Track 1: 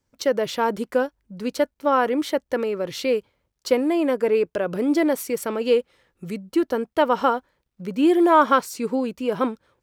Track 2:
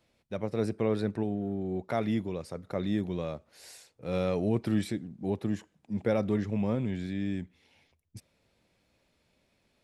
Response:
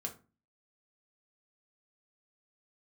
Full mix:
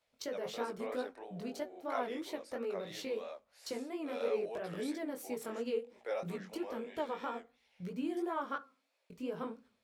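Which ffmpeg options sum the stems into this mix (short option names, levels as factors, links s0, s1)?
-filter_complex "[0:a]agate=range=0.398:threshold=0.00562:ratio=16:detection=peak,acompressor=threshold=0.02:ratio=2,volume=0.316,asplit=3[s0][s1][s2];[s0]atrim=end=8.56,asetpts=PTS-STARTPTS,afade=t=out:st=8.556:d=0.004:c=hsin[s3];[s1]atrim=start=8.56:end=9.1,asetpts=PTS-STARTPTS,volume=0[s4];[s2]atrim=start=9.1,asetpts=PTS-STARTPTS,afade=t=in:d=0.004:c=hsin[s5];[s3][s4][s5]concat=n=3:v=0:a=1,asplit=2[s6][s7];[s7]volume=0.668[s8];[1:a]highpass=f=520:w=0.5412,highpass=f=520:w=1.3066,volume=0.631[s9];[2:a]atrim=start_sample=2205[s10];[s8][s10]afir=irnorm=-1:irlink=0[s11];[s6][s9][s11]amix=inputs=3:normalize=0,flanger=delay=16:depth=7.1:speed=3"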